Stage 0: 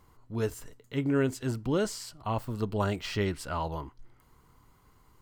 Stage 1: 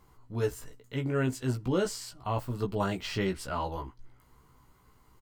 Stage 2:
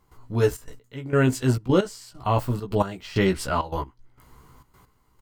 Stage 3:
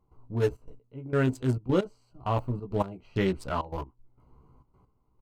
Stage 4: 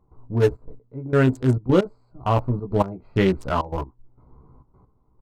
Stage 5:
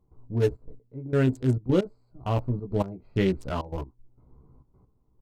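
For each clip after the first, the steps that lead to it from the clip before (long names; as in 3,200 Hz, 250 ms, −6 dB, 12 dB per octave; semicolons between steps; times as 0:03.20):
double-tracking delay 16 ms −4 dB; level −1.5 dB
gate pattern ".xxxx.x.." 133 BPM −12 dB; level +9 dB
adaptive Wiener filter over 25 samples; level −5 dB
adaptive Wiener filter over 15 samples; level +7.5 dB
parametric band 1,100 Hz −7 dB 1.4 octaves; level −4 dB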